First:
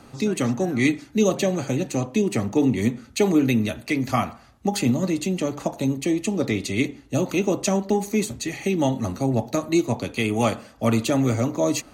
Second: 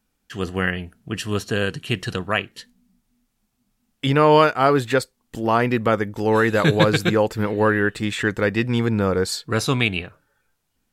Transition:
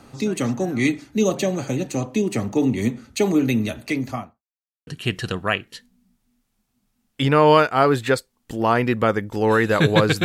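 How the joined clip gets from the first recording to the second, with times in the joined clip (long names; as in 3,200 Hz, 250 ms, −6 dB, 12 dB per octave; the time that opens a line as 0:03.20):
first
0:03.90–0:04.43: fade out and dull
0:04.43–0:04.87: silence
0:04.87: continue with second from 0:01.71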